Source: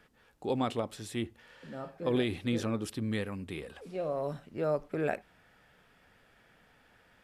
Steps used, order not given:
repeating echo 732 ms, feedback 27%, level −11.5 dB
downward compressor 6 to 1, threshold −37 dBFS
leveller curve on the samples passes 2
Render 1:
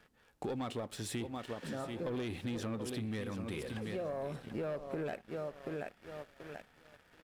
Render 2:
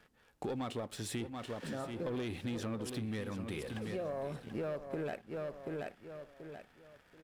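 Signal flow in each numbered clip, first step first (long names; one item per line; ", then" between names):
repeating echo, then leveller curve on the samples, then downward compressor
leveller curve on the samples, then repeating echo, then downward compressor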